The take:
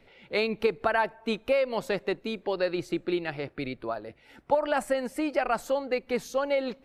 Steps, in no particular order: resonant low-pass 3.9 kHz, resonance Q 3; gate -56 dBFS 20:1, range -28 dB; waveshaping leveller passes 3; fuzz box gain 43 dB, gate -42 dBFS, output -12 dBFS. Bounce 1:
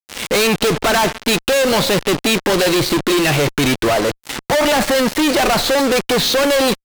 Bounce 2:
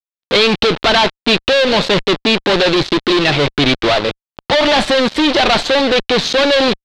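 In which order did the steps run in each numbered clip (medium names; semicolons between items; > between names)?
resonant low-pass > waveshaping leveller > gate > fuzz box; fuzz box > waveshaping leveller > resonant low-pass > gate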